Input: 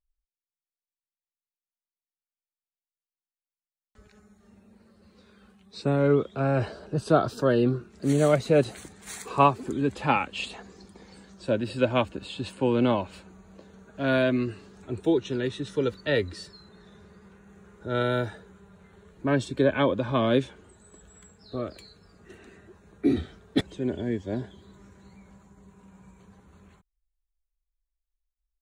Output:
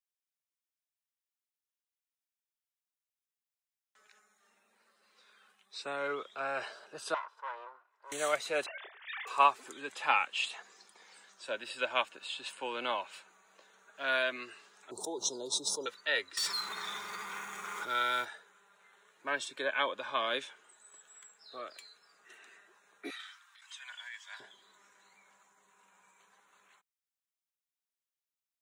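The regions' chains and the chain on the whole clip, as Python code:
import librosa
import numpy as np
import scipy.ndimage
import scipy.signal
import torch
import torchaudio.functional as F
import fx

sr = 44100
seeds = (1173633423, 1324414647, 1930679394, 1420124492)

y = fx.chain(x, sr, fx.lower_of_two(delay_ms=2.0),
    fx.bandpass_q(hz=1000.0, q=3.7),
    fx.tube_stage(drive_db=25.0, bias=0.35), at=(7.14, 8.12))
y = fx.chain(y, sr, fx.sine_speech(),
    fx.doubler(ms=28.0, db=-9.5), at=(8.66, 9.27))
y = fx.chain(y, sr, fx.ellip_bandstop(low_hz=900.0, high_hz=4600.0, order=3, stop_db=80),
    fx.env_flatten(amount_pct=70), at=(14.91, 15.86))
y = fx.chain(y, sr, fx.law_mismatch(coded='mu'),
    fx.comb(ms=0.9, depth=0.47),
    fx.env_flatten(amount_pct=70), at=(16.37, 18.25))
y = fx.chain(y, sr, fx.steep_highpass(hz=1000.0, slope=36),
    fx.over_compress(threshold_db=-47.0, ratio=-1.0), at=(23.1, 24.4))
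y = scipy.signal.sosfilt(scipy.signal.butter(2, 1100.0, 'highpass', fs=sr, output='sos'), y)
y = fx.notch(y, sr, hz=4400.0, q=12.0)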